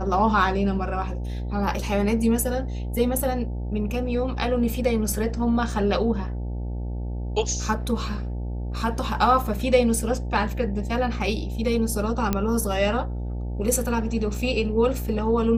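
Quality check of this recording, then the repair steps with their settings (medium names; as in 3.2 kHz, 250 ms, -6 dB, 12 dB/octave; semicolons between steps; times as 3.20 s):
buzz 60 Hz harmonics 15 -29 dBFS
12.33 s: pop -9 dBFS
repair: de-click; de-hum 60 Hz, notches 15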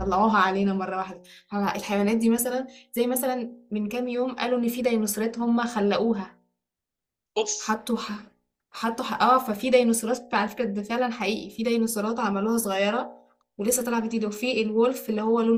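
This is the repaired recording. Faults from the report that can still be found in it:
nothing left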